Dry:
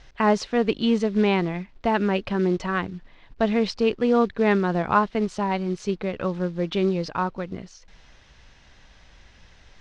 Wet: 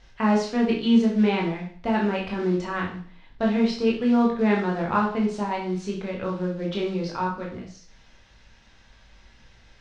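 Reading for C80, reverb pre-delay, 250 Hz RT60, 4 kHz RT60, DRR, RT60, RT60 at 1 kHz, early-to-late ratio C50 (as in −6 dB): 10.5 dB, 17 ms, 0.45 s, 0.45 s, −2.0 dB, 0.45 s, 0.45 s, 5.5 dB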